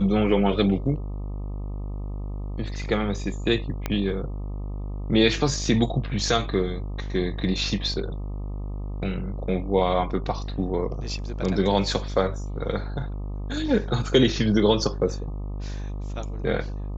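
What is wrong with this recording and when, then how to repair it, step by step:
buzz 50 Hz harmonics 25 -31 dBFS
3.86 pop -12 dBFS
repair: de-click; de-hum 50 Hz, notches 25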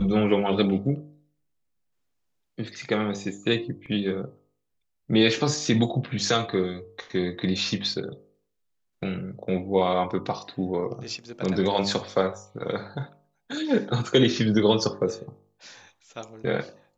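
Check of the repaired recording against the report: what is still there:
3.86 pop

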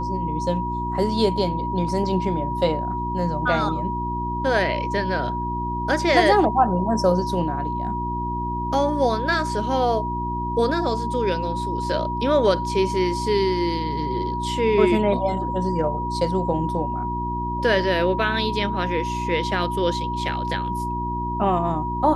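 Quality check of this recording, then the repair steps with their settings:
hum 60 Hz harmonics 6 -29 dBFS
tone 960 Hz -26 dBFS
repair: de-hum 60 Hz, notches 6; notch 960 Hz, Q 30

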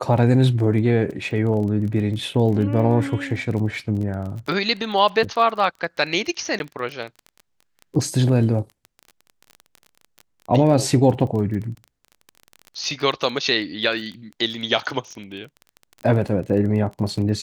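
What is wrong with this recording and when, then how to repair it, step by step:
crackle 22/s -29 dBFS
6.59–6.6 gap 11 ms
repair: de-click; interpolate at 6.59, 11 ms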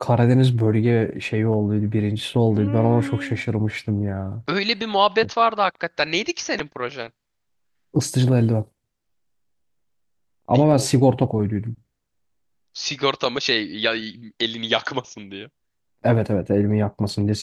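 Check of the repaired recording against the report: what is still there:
none

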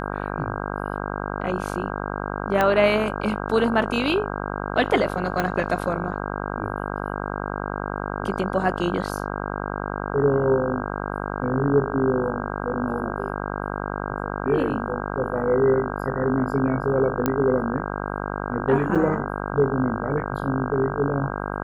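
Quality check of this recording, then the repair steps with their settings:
buzz 50 Hz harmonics 32 -29 dBFS
2.61 pop -8 dBFS
5.4 pop -9 dBFS
17.26 pop -8 dBFS
18.95–18.96 gap 6.4 ms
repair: de-click; de-hum 50 Hz, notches 32; interpolate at 18.95, 6.4 ms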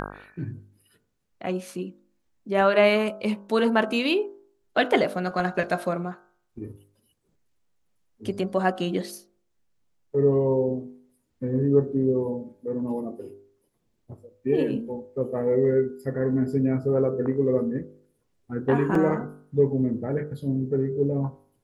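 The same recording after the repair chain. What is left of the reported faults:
2.61 pop
5.4 pop

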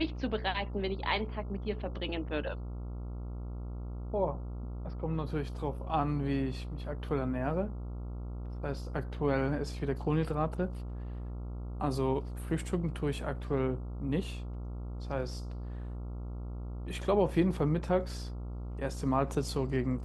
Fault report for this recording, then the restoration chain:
buzz 60 Hz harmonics 23 -39 dBFS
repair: de-hum 60 Hz, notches 23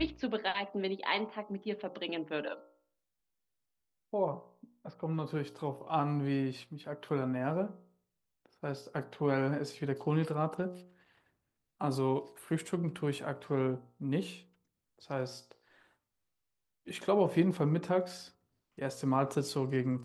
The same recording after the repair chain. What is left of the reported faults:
none

